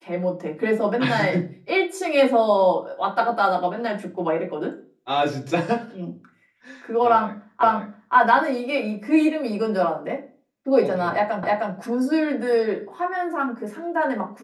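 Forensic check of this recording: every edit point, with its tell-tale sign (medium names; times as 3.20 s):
7.63 s: repeat of the last 0.52 s
11.43 s: repeat of the last 0.31 s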